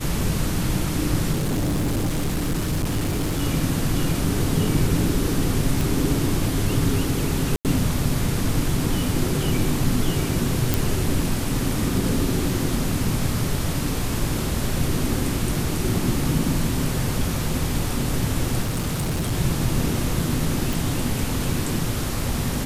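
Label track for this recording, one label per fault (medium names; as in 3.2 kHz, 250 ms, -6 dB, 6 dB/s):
1.320000	3.420000	clipped -19.5 dBFS
5.810000	5.810000	pop
7.560000	7.650000	dropout 88 ms
10.740000	10.740000	pop
18.620000	19.330000	clipped -20 dBFS
20.730000	20.730000	pop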